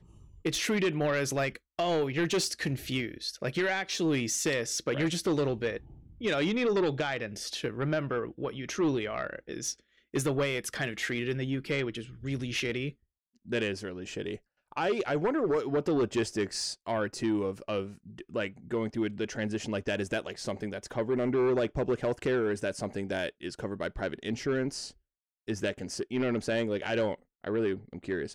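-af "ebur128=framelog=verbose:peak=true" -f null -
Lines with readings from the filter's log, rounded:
Integrated loudness:
  I:         -31.4 LUFS
  Threshold: -41.6 LUFS
Loudness range:
  LRA:         4.0 LU
  Threshold: -51.7 LUFS
  LRA low:   -34.0 LUFS
  LRA high:  -30.1 LUFS
True peak:
  Peak:      -22.5 dBFS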